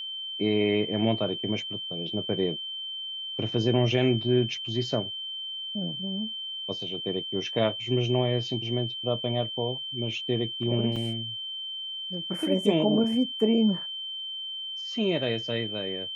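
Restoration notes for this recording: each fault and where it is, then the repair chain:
tone 3100 Hz -33 dBFS
10.96 gap 3.7 ms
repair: notch 3100 Hz, Q 30; interpolate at 10.96, 3.7 ms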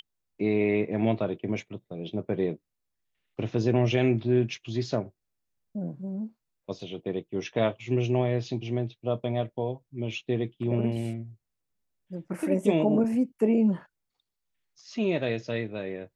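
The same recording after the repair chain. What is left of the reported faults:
none

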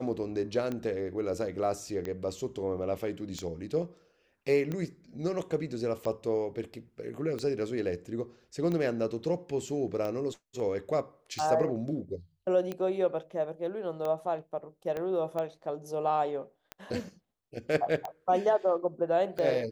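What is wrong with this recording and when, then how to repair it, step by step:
tick 45 rpm -22 dBFS
14.97 pop -23 dBFS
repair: de-click

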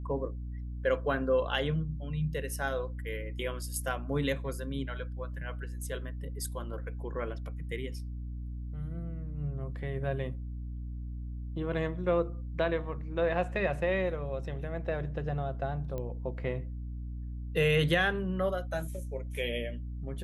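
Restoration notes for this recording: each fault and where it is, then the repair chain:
hum 60 Hz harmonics 5 -38 dBFS
15.98 pop -25 dBFS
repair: de-click; de-hum 60 Hz, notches 5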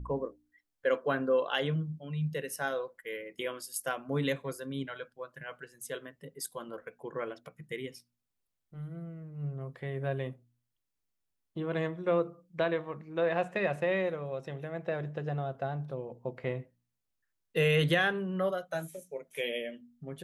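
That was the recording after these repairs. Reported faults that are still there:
none

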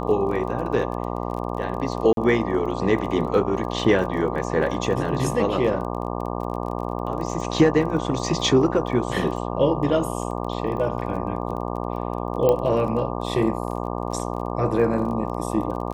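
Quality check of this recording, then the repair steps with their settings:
buzz 60 Hz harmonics 20 -28 dBFS
crackle 24/s -32 dBFS
2.13–2.17 gap 42 ms
12.49 pop -9 dBFS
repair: de-click; de-hum 60 Hz, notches 20; interpolate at 2.13, 42 ms

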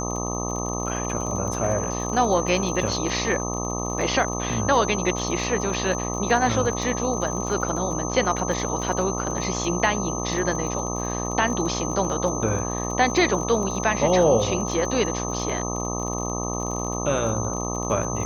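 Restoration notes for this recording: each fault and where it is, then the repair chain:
buzz 60 Hz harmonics 21 -29 dBFS
crackle 33/s -30 dBFS
tone 6200 Hz -31 dBFS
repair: de-click; notch 6200 Hz, Q 30; de-hum 60 Hz, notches 21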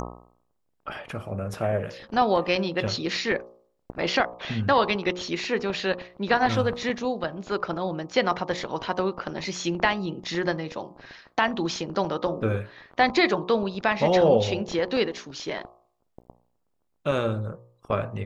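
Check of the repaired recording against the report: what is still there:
none

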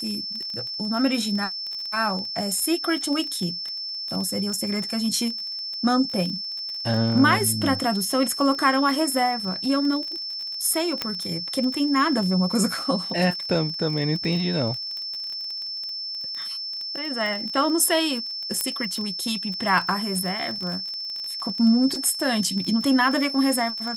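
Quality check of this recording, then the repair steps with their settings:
crackle 24/s -28 dBFS
tone 5300 Hz -29 dBFS
11.02 pop -9 dBFS
18.61 pop -7 dBFS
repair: de-click; notch 5300 Hz, Q 30

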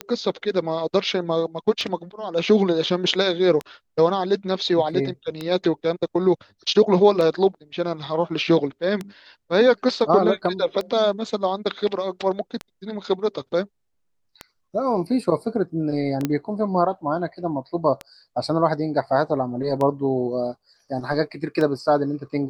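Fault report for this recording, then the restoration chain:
tick 33 1/3 rpm -14 dBFS
16.25 pop -9 dBFS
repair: de-click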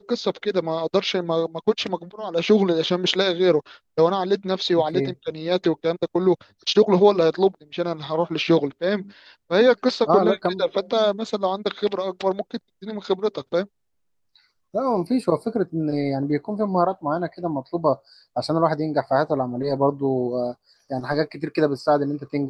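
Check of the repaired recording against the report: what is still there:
none

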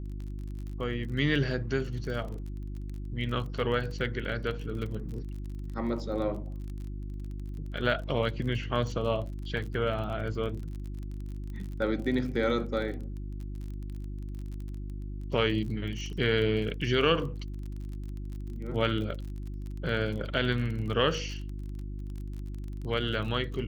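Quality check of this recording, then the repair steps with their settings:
crackle 31/s -37 dBFS
hum 50 Hz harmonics 7 -37 dBFS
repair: de-click; de-hum 50 Hz, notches 7

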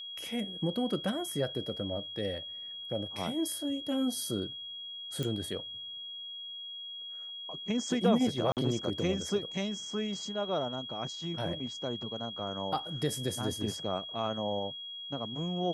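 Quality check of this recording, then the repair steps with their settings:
tone 3300 Hz -40 dBFS
5.23 pop -21 dBFS
8.52–8.57 gap 48 ms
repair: de-click; notch 3300 Hz, Q 30; interpolate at 8.52, 48 ms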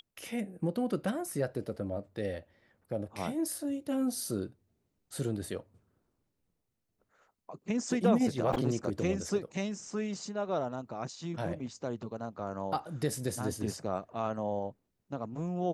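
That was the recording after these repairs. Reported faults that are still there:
none

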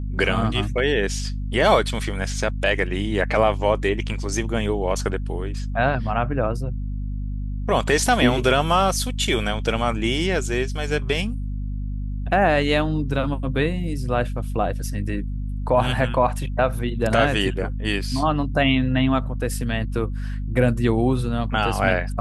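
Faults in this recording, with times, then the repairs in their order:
hum 50 Hz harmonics 5 -27 dBFS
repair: de-hum 50 Hz, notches 5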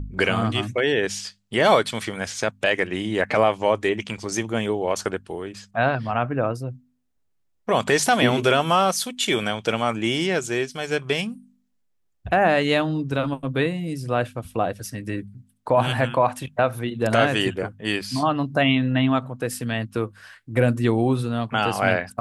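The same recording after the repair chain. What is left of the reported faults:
none

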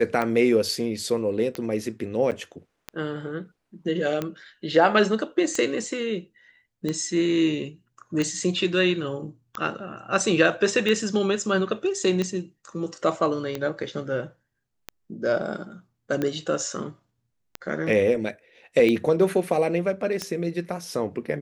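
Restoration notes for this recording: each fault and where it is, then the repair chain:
tick 45 rpm -14 dBFS
2.31–2.32 gap 8.2 ms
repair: de-click; interpolate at 2.31, 8.2 ms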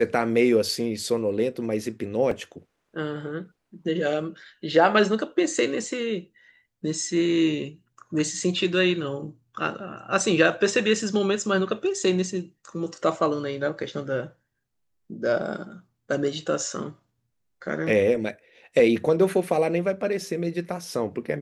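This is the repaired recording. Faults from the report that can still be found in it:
none

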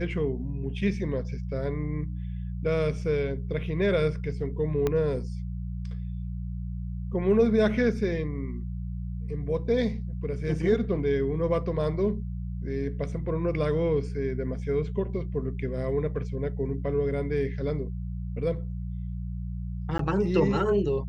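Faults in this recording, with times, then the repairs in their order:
hum 60 Hz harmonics 3 -33 dBFS
4.87 pop -14 dBFS
19.98–19.99 gap 13 ms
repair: de-click; de-hum 60 Hz, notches 3; interpolate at 19.98, 13 ms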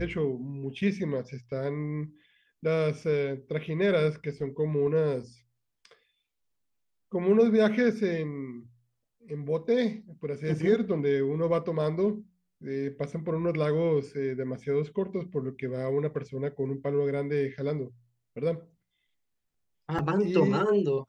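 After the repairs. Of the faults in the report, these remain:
4.87 pop

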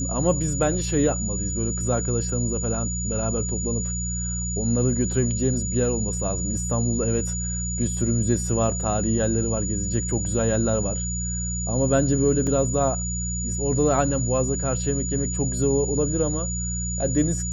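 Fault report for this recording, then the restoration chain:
hum 60 Hz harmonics 3 -29 dBFS
tone 6900 Hz -29 dBFS
12.47 gap 3.5 ms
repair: notch 6900 Hz, Q 30; de-hum 60 Hz, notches 3; interpolate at 12.47, 3.5 ms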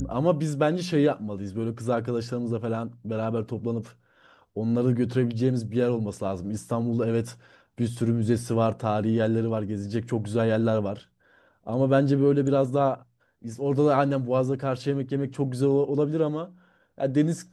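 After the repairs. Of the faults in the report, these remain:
none

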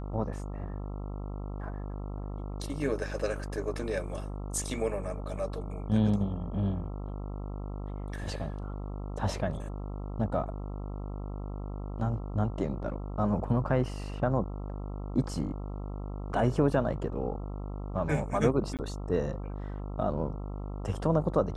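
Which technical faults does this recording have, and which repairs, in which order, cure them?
buzz 50 Hz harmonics 27 -37 dBFS
18.77–18.79 gap 18 ms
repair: de-hum 50 Hz, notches 27; interpolate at 18.77, 18 ms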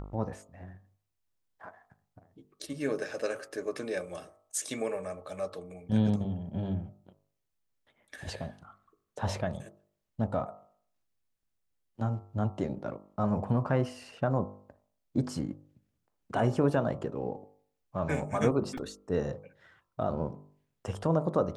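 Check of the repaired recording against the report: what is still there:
none

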